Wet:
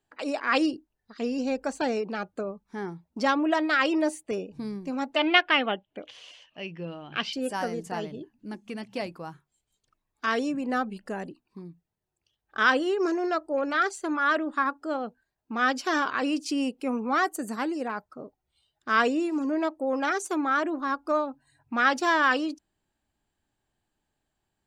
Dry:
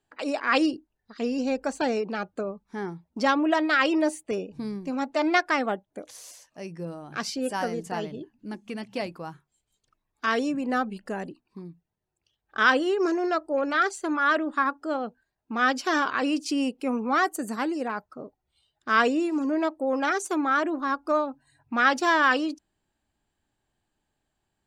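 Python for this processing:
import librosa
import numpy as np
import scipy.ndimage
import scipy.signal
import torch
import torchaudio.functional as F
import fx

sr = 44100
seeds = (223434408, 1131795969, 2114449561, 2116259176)

y = fx.lowpass_res(x, sr, hz=3000.0, q=7.6, at=(5.16, 7.33))
y = F.gain(torch.from_numpy(y), -1.5).numpy()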